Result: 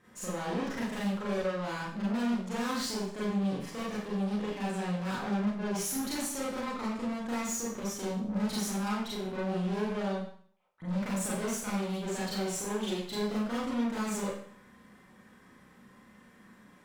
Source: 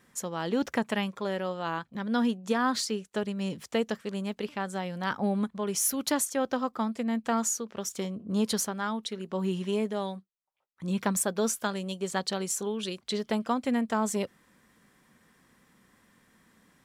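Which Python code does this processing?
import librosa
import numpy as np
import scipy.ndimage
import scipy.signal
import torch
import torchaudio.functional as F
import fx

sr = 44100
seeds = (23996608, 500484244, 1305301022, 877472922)

y = fx.high_shelf(x, sr, hz=3300.0, db=-10.0)
y = fx.tube_stage(y, sr, drive_db=39.0, bias=0.4)
y = fx.rev_schroeder(y, sr, rt60_s=0.54, comb_ms=30, drr_db=-7.5)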